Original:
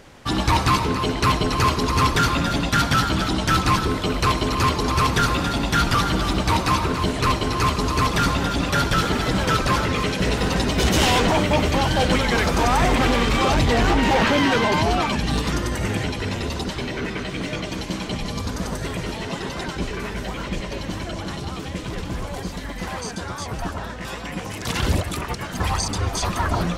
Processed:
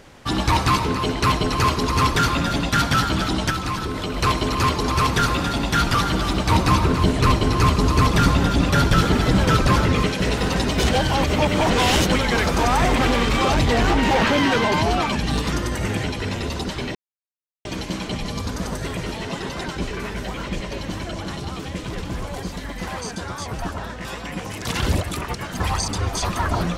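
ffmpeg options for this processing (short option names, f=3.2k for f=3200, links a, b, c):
-filter_complex "[0:a]asettb=1/sr,asplit=3[a][b][c];[a]atrim=end=3.504[d];[b]atrim=start=3.5:end=4.17,asetpts=PTS-STARTPTS,afade=t=in:d=0.004:c=qsin,afade=t=out:st=0.666:d=0.004:c=qsin,acompressor=threshold=-22dB:ratio=5:attack=3.2:release=140:knee=1:detection=peak[e];[c]atrim=start=4.166[f];[d][e]acrossfade=d=0.004:c1=hsin:c2=qsin[g];[g][f]acrossfade=d=0.004:c1=qsin:c2=hsin,asettb=1/sr,asplit=3[h][i][j];[h]atrim=end=6.514[k];[i]atrim=start=6.51:end=10.07,asetpts=PTS-STARTPTS,afade=t=in:d=0.004:c=qsin,afade=t=out:st=3.556:d=0.004:c=qsin,lowshelf=f=350:g=6.5[l];[j]atrim=start=10.066[m];[k][l]acrossfade=d=0.004:c1=hsin:c2=qsin[n];[n][m]acrossfade=d=0.004:c1=qsin:c2=hsin,asplit=5[o][p][q][r][s];[o]atrim=end=10.912[t];[p]atrim=start=10.908:end=12.072,asetpts=PTS-STARTPTS,areverse[u];[q]atrim=start=12.068:end=16.95,asetpts=PTS-STARTPTS,afade=t=out:st=4.878:d=0.004:c=hsin[v];[r]atrim=start=16.95:end=17.65,asetpts=PTS-STARTPTS,volume=0[w];[s]atrim=start=17.65,asetpts=PTS-STARTPTS,afade=t=in:d=0.004:c=hsin[x];[t][u]acrossfade=d=0.004:c1=hsin:c2=hsin[y];[v][w][x]concat=n=3:v=0:a=1[z];[y][z]acrossfade=d=0.004:c1=hsin:c2=hsin"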